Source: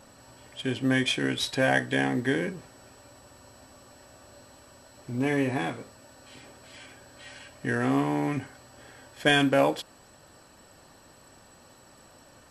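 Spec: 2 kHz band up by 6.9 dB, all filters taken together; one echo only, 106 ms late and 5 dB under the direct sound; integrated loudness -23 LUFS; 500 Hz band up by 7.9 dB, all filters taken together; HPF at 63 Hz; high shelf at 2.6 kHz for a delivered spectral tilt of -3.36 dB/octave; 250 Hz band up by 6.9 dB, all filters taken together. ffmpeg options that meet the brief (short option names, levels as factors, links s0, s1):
-af "highpass=63,equalizer=f=250:t=o:g=5.5,equalizer=f=500:t=o:g=7.5,equalizer=f=2000:t=o:g=7,highshelf=f=2600:g=3,aecho=1:1:106:0.562,volume=0.631"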